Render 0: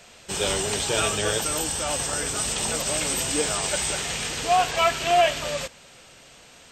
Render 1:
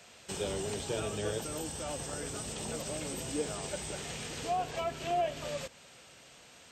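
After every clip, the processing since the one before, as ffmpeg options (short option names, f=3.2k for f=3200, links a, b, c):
-filter_complex "[0:a]highpass=60,acrossover=split=620[a][b];[b]acompressor=threshold=-34dB:ratio=6[c];[a][c]amix=inputs=2:normalize=0,volume=-6dB"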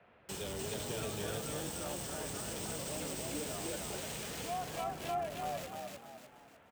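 -filter_complex "[0:a]acrossover=split=290|760|2200[a][b][c][d];[b]alimiter=level_in=13.5dB:limit=-24dB:level=0:latency=1,volume=-13.5dB[e];[d]acrusher=bits=6:mix=0:aa=0.000001[f];[a][e][c][f]amix=inputs=4:normalize=0,asplit=6[g][h][i][j][k][l];[h]adelay=301,afreqshift=39,volume=-3dB[m];[i]adelay=602,afreqshift=78,volume=-11dB[n];[j]adelay=903,afreqshift=117,volume=-18.9dB[o];[k]adelay=1204,afreqshift=156,volume=-26.9dB[p];[l]adelay=1505,afreqshift=195,volume=-34.8dB[q];[g][m][n][o][p][q]amix=inputs=6:normalize=0,volume=-4dB"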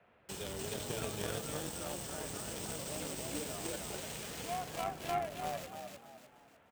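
-af "aeval=exprs='0.0562*(cos(1*acos(clip(val(0)/0.0562,-1,1)))-cos(1*PI/2))+0.0126*(cos(3*acos(clip(val(0)/0.0562,-1,1)))-cos(3*PI/2))':c=same,volume=6.5dB"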